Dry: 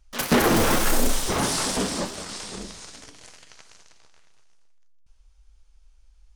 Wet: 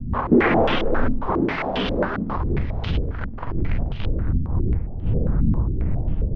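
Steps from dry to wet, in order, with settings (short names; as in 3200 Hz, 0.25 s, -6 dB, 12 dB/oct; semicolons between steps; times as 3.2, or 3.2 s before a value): wind noise 82 Hz -28 dBFS; recorder AGC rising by 69 dB/s; air absorption 220 m; stepped low-pass 7.4 Hz 240–3100 Hz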